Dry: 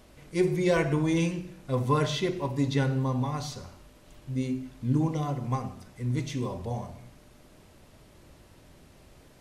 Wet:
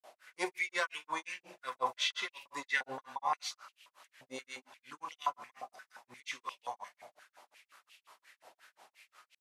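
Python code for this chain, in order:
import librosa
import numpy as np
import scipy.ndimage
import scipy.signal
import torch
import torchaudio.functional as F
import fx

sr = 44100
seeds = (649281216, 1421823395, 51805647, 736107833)

y = fx.granulator(x, sr, seeds[0], grain_ms=160.0, per_s=5.6, spray_ms=100.0, spread_st=0)
y = fx.filter_held_highpass(y, sr, hz=5.7, low_hz=710.0, high_hz=2700.0)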